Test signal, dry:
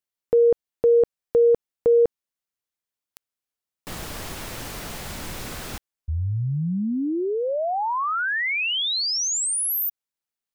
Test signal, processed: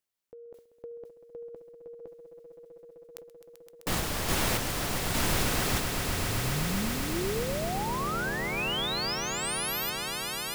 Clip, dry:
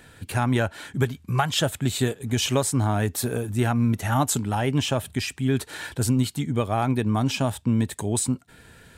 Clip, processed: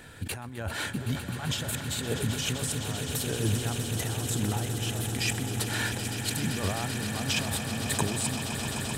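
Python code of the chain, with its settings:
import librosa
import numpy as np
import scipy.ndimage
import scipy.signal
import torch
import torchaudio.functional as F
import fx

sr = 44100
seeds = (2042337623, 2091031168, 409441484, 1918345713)

y = fx.over_compress(x, sr, threshold_db=-32.0, ratio=-1.0)
y = fx.tremolo_random(y, sr, seeds[0], hz=3.5, depth_pct=55)
y = fx.echo_swell(y, sr, ms=129, loudest=8, wet_db=-11.5)
y = fx.sustainer(y, sr, db_per_s=120.0)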